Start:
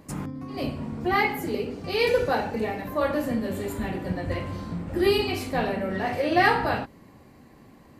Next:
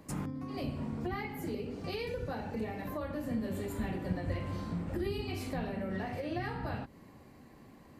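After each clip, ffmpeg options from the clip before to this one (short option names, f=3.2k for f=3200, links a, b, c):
-filter_complex "[0:a]acrossover=split=220[a][b];[b]acompressor=threshold=-33dB:ratio=10[c];[a][c]amix=inputs=2:normalize=0,volume=-4dB"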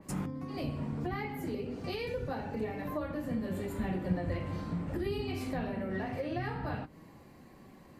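-af "flanger=delay=5.2:depth=3:regen=66:speed=0.26:shape=triangular,adynamicequalizer=threshold=0.00112:dfrequency=3200:dqfactor=0.7:tfrequency=3200:tqfactor=0.7:attack=5:release=100:ratio=0.375:range=2:mode=cutabove:tftype=highshelf,volume=5.5dB"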